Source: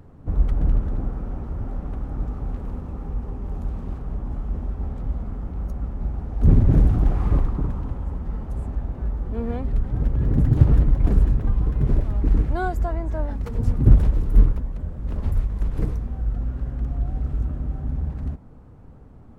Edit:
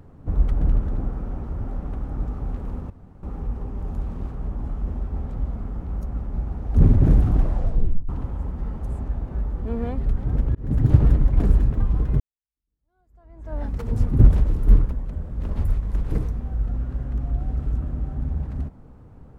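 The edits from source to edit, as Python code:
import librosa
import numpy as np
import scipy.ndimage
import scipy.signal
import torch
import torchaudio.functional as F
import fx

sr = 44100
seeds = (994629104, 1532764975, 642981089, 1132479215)

y = fx.edit(x, sr, fx.insert_room_tone(at_s=2.9, length_s=0.33),
    fx.tape_stop(start_s=7.02, length_s=0.74),
    fx.fade_in_span(start_s=10.22, length_s=0.28),
    fx.fade_in_span(start_s=11.87, length_s=1.41, curve='exp'), tone=tone)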